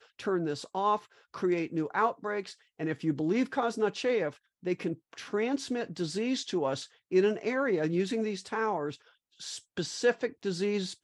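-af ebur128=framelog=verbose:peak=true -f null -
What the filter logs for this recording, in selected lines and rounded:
Integrated loudness:
  I:         -31.4 LUFS
  Threshold: -41.6 LUFS
Loudness range:
  LRA:         1.7 LU
  Threshold: -51.5 LUFS
  LRA low:   -32.2 LUFS
  LRA high:  -30.5 LUFS
True peak:
  Peak:      -14.1 dBFS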